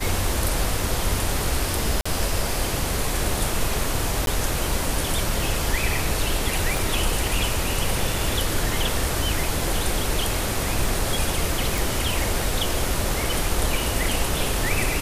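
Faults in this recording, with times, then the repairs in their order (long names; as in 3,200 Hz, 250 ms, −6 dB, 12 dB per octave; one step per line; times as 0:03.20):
0:02.01–0:02.06: drop-out 45 ms
0:04.26–0:04.27: drop-out 12 ms
0:06.77: click
0:11.78: click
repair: click removal
repair the gap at 0:02.01, 45 ms
repair the gap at 0:04.26, 12 ms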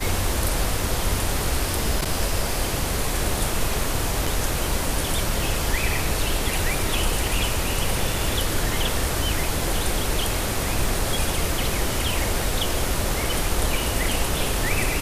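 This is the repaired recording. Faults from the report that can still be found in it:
0:06.77: click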